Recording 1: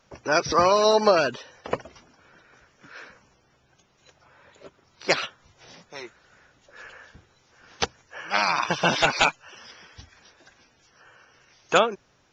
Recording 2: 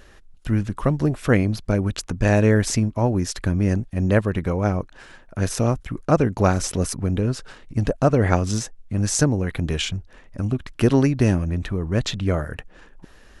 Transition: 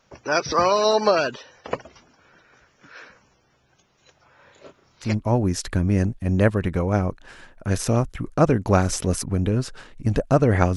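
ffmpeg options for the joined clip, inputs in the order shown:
-filter_complex "[0:a]asettb=1/sr,asplit=3[a][b][c];[a]atrim=end=4.354[d];[b]atrim=start=4.35:end=5.15,asetpts=PTS-STARTPTS,afade=t=in:d=0.004:c=qsin,afade=t=out:st=0.796:d=0.004:c=qsin,asplit=2[e][f];[f]adelay=32,volume=-4dB[g];[e][g]amix=inputs=2:normalize=0,atrim=end_sample=35280[h];[c]atrim=start=5.146[i];[d][h]acrossfade=d=0.004:c1=hsin:c2=qsin[j];[j][i]acrossfade=d=0.004:c1=qsin:c2=hsin,apad=whole_dur=10.76,atrim=end=10.76,atrim=end=5.15,asetpts=PTS-STARTPTS[k];[1:a]atrim=start=2.72:end=8.47,asetpts=PTS-STARTPTS[l];[k][l]acrossfade=d=0.14:c1=tri:c2=tri"

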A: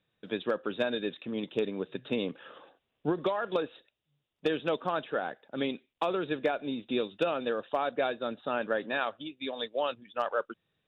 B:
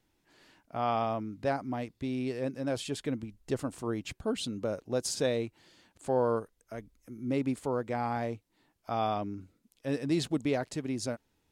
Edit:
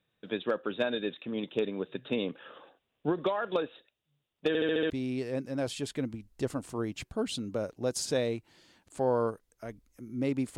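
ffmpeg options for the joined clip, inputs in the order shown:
-filter_complex "[0:a]apad=whole_dur=10.57,atrim=end=10.57,asplit=6[a][b][c][d][e][f];[a]atrim=end=4.552[g];[b]atrim=start=4.478:end=4.552[h];[c]atrim=start=4.478:end=4.552[i];[d]atrim=start=4.478:end=4.552[j];[e]atrim=start=4.478:end=4.552[k];[f]atrim=start=4.478:end=4.552[l];[1:a]atrim=start=1.988:end=7.66[m];[g][h]acrossfade=d=0.004:c1=hsin:c2=hsin[n];[n][i]acrossfade=d=0.004:c1=hsin:c2=hsin[o];[o][j]acrossfade=d=0.004:c1=hsin:c2=hsin[p];[p][k]acrossfade=d=0.004:c1=hsin:c2=hsin[q];[q][l]acrossfade=d=0.004:c1=hsin:c2=hsin[r];[r][m]acrossfade=d=0.004:c1=hsin:c2=hsin"

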